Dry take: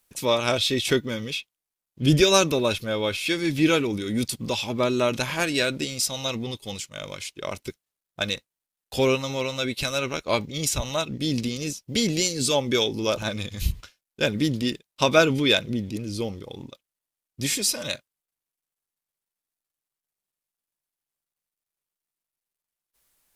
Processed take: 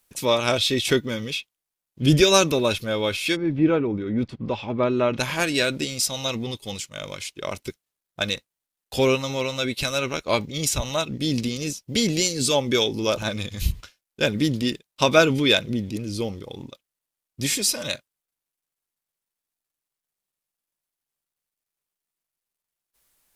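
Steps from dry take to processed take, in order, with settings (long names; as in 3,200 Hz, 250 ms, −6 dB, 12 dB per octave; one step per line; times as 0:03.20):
0:03.35–0:05.18: low-pass filter 1,000 Hz → 2,400 Hz 12 dB per octave
level +1.5 dB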